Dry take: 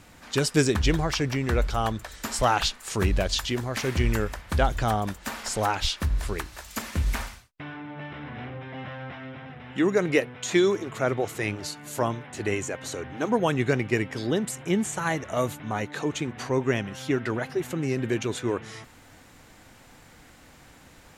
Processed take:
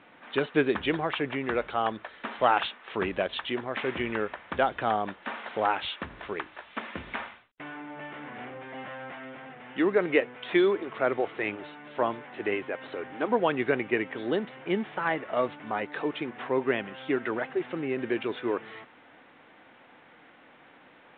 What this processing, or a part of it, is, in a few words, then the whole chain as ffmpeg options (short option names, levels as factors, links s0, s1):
telephone: -af "highpass=290,lowpass=3200" -ar 8000 -c:a pcm_mulaw